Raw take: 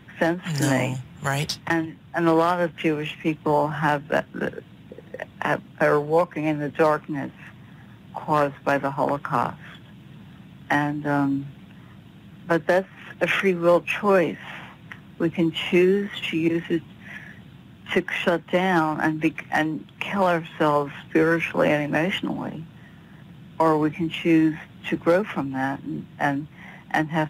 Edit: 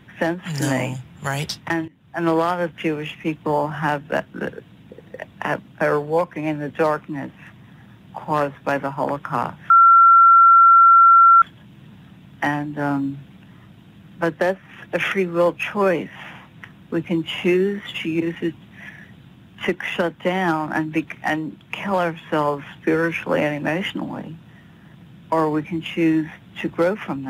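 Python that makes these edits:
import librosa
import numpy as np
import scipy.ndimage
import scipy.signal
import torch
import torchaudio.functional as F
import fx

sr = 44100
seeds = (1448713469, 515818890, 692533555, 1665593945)

y = fx.edit(x, sr, fx.fade_in_from(start_s=1.88, length_s=0.36, floor_db=-18.5),
    fx.insert_tone(at_s=9.7, length_s=1.72, hz=1360.0, db=-7.0), tone=tone)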